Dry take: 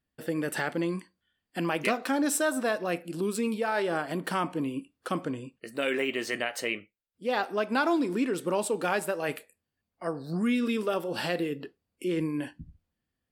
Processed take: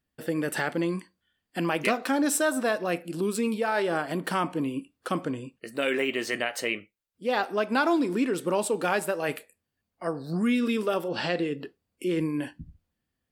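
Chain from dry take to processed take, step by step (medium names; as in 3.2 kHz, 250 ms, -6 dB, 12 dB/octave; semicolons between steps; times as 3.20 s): 11.08–11.56 s: low-pass 5.3 kHz -> 9.4 kHz 24 dB/octave; trim +2 dB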